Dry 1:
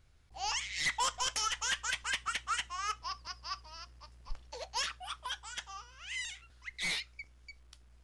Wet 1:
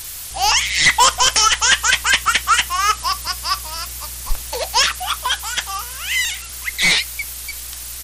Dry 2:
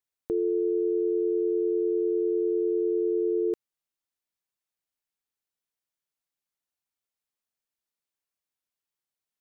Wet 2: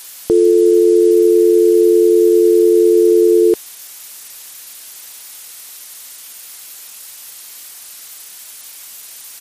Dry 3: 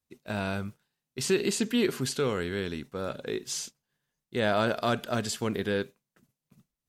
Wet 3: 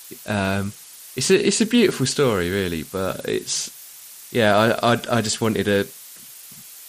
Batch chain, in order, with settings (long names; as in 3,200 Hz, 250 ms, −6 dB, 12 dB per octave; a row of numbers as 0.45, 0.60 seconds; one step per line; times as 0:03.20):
downsampling to 22,050 Hz
background noise blue −48 dBFS
MP3 56 kbit/s 44,100 Hz
normalise the peak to −3 dBFS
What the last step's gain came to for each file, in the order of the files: +20.0, +16.0, +10.0 decibels